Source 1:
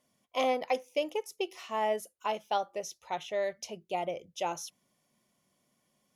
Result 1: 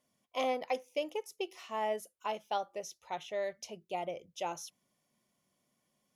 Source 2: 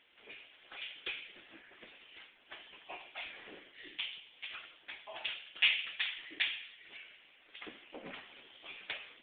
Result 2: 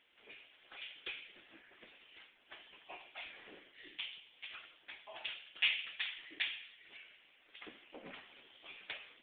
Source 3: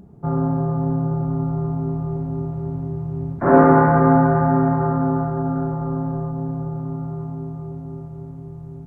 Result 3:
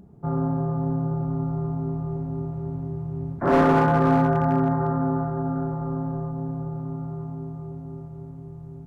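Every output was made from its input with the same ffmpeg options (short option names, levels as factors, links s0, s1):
-af "volume=2.99,asoftclip=hard,volume=0.335,volume=0.631"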